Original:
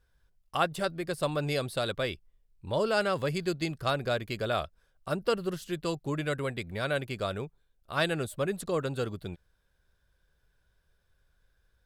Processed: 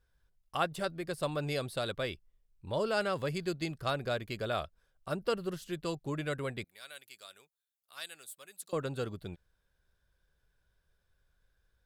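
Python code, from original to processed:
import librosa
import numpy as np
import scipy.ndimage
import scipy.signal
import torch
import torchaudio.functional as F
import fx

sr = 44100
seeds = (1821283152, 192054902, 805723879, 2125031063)

y = fx.differentiator(x, sr, at=(6.64, 8.73))
y = F.gain(torch.from_numpy(y), -4.0).numpy()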